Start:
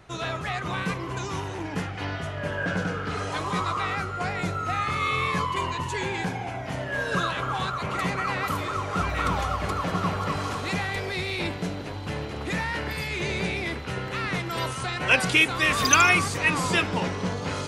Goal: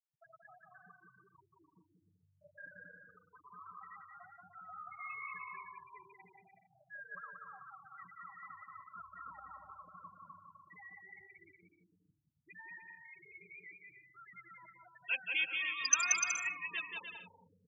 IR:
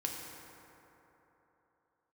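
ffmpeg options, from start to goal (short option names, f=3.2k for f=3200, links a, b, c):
-filter_complex "[0:a]asplit=2[a][b];[b]equalizer=f=5.4k:t=o:w=0.52:g=-4.5[c];[1:a]atrim=start_sample=2205[d];[c][d]afir=irnorm=-1:irlink=0,volume=-18dB[e];[a][e]amix=inputs=2:normalize=0,afftfilt=real='re*gte(hypot(re,im),0.224)':imag='im*gte(hypot(re,im),0.224)':win_size=1024:overlap=0.75,aderivative,aecho=1:1:180|297|373|422.5|454.6:0.631|0.398|0.251|0.158|0.1,volume=-6dB"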